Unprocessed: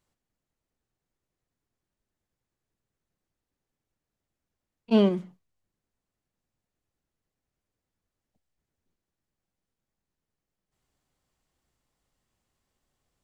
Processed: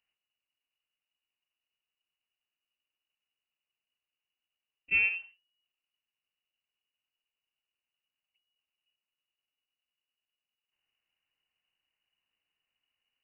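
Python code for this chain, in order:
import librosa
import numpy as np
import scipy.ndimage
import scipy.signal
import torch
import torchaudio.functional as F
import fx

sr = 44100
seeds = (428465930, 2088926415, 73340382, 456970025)

y = fx.freq_invert(x, sr, carrier_hz=2900)
y = F.gain(torch.from_numpy(y), -7.0).numpy()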